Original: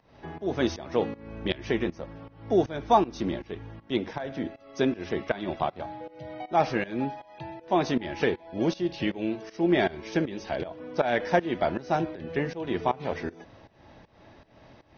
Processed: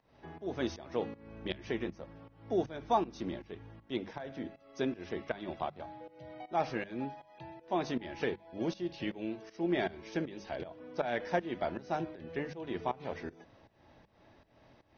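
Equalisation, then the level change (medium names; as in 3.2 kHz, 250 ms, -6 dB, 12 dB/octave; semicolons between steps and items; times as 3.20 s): hum notches 50/100/150/200 Hz; -8.5 dB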